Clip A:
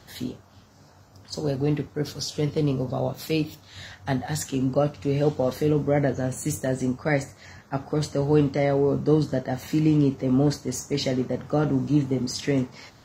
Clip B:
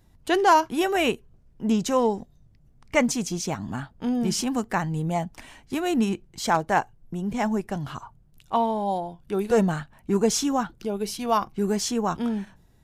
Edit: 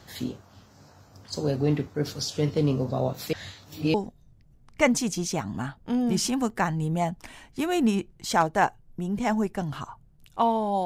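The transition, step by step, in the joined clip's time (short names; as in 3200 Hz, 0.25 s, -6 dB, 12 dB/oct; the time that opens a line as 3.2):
clip A
3.33–3.94 reverse
3.94 switch to clip B from 2.08 s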